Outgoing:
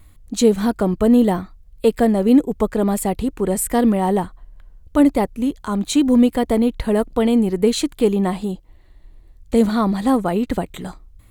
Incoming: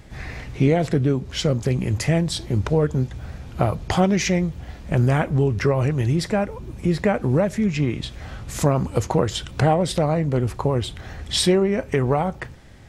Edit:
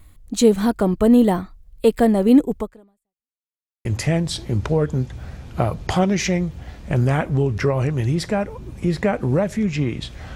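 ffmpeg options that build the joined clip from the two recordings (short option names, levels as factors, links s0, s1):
-filter_complex "[0:a]apad=whole_dur=10.35,atrim=end=10.35,asplit=2[s0][s1];[s0]atrim=end=3.36,asetpts=PTS-STARTPTS,afade=t=out:st=2.57:d=0.79:c=exp[s2];[s1]atrim=start=3.36:end=3.85,asetpts=PTS-STARTPTS,volume=0[s3];[1:a]atrim=start=1.86:end=8.36,asetpts=PTS-STARTPTS,afade=t=in:d=0.004:c=hsin[s4];[s2][s3][s4]concat=n=3:v=0:a=1"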